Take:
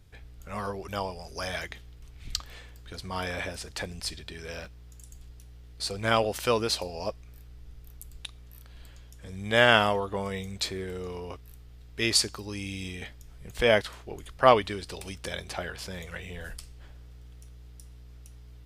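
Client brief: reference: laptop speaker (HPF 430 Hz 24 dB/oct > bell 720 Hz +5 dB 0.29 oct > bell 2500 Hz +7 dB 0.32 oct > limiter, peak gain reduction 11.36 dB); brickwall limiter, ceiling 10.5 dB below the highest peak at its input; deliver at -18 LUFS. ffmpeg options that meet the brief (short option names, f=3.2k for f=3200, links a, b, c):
-af "alimiter=limit=-13dB:level=0:latency=1,highpass=f=430:w=0.5412,highpass=f=430:w=1.3066,equalizer=f=720:t=o:w=0.29:g=5,equalizer=f=2.5k:t=o:w=0.32:g=7,volume=18.5dB,alimiter=limit=-4.5dB:level=0:latency=1"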